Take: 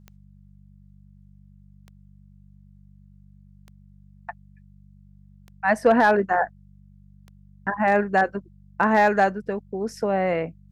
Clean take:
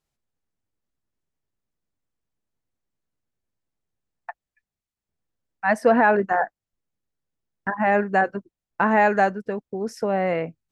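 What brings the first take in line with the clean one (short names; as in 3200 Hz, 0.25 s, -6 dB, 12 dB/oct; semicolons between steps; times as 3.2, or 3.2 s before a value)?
clip repair -9 dBFS; de-click; de-hum 48.7 Hz, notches 4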